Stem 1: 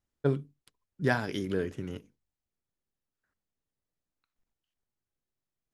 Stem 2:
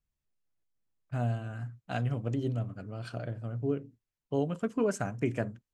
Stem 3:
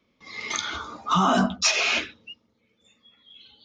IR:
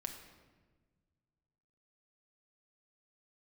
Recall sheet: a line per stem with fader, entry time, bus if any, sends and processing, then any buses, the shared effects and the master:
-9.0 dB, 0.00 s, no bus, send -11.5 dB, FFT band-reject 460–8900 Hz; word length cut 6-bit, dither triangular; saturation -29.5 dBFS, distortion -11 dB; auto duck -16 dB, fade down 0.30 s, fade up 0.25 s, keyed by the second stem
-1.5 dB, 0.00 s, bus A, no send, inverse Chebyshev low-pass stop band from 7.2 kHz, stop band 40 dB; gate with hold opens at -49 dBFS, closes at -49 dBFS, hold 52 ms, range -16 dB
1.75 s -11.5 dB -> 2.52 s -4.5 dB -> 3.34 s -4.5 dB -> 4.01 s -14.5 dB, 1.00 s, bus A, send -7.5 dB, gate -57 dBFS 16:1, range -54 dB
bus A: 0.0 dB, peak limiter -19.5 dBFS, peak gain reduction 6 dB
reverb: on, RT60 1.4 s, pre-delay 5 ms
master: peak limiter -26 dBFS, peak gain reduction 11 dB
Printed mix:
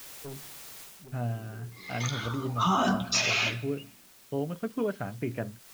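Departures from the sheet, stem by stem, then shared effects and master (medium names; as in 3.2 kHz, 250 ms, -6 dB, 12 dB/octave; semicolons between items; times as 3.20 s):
stem 3: entry 1.00 s -> 1.50 s; master: missing peak limiter -26 dBFS, peak gain reduction 11 dB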